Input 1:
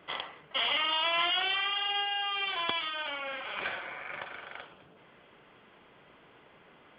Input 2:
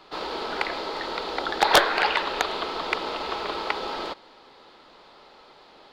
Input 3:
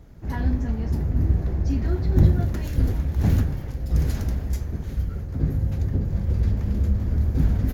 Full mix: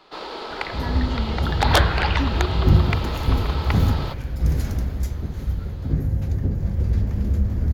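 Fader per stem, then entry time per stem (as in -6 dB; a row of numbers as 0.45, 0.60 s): -13.5, -1.5, +1.0 dB; 0.55, 0.00, 0.50 s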